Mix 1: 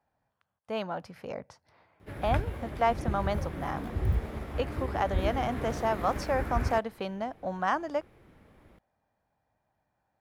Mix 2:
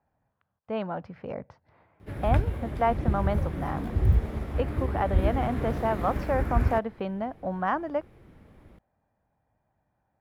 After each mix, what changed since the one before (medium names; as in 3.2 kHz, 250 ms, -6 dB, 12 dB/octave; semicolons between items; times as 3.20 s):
speech: add low-pass 2.5 kHz 12 dB/octave; master: add bass shelf 350 Hz +6.5 dB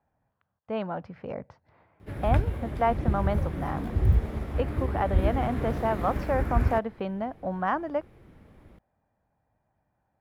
no change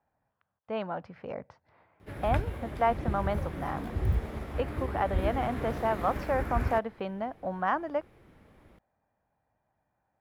master: add bass shelf 350 Hz -6.5 dB